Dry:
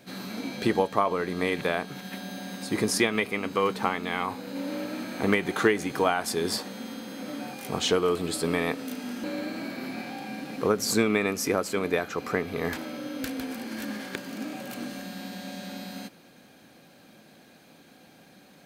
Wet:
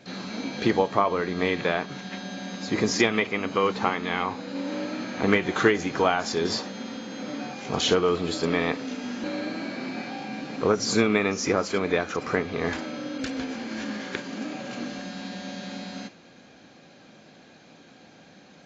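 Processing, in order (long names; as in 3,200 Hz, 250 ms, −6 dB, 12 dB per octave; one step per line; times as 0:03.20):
level +2 dB
AAC 24 kbit/s 16,000 Hz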